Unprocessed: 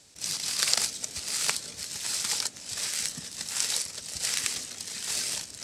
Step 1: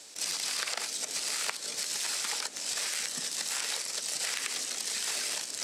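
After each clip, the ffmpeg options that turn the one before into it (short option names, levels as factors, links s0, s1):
-filter_complex "[0:a]acrossover=split=2900[s0][s1];[s1]acompressor=threshold=0.0251:ratio=4:attack=1:release=60[s2];[s0][s2]amix=inputs=2:normalize=0,highpass=350,acompressor=threshold=0.0141:ratio=6,volume=2.37"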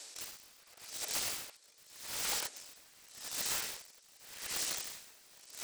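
-filter_complex "[0:a]equalizer=f=180:w=1.1:g=-11.5,acrossover=split=870[s0][s1];[s1]aeval=exprs='(mod(23.7*val(0)+1,2)-1)/23.7':c=same[s2];[s0][s2]amix=inputs=2:normalize=0,aeval=exprs='val(0)*pow(10,-27*(0.5-0.5*cos(2*PI*0.86*n/s))/20)':c=same"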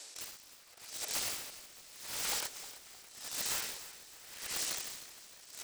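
-filter_complex "[0:a]asplit=6[s0][s1][s2][s3][s4][s5];[s1]adelay=308,afreqshift=-42,volume=0.188[s6];[s2]adelay=616,afreqshift=-84,volume=0.0923[s7];[s3]adelay=924,afreqshift=-126,volume=0.0452[s8];[s4]adelay=1232,afreqshift=-168,volume=0.0221[s9];[s5]adelay=1540,afreqshift=-210,volume=0.0108[s10];[s0][s6][s7][s8][s9][s10]amix=inputs=6:normalize=0"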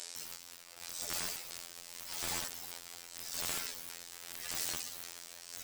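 -af "afftfilt=real='hypot(re,im)*cos(PI*b)':imag='0':win_size=2048:overlap=0.75,aeval=exprs='(mod(23.7*val(0)+1,2)-1)/23.7':c=same,volume=2.51"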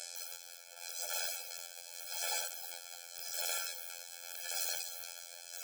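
-filter_complex "[0:a]asplit=2[s0][s1];[s1]acrusher=bits=3:mode=log:mix=0:aa=0.000001,volume=0.531[s2];[s0][s2]amix=inputs=2:normalize=0,afftfilt=real='re*eq(mod(floor(b*sr/1024/440),2),1)':imag='im*eq(mod(floor(b*sr/1024/440),2),1)':win_size=1024:overlap=0.75"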